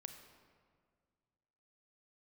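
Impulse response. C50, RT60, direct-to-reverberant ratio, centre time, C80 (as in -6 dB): 7.5 dB, 1.9 s, 6.5 dB, 28 ms, 8.5 dB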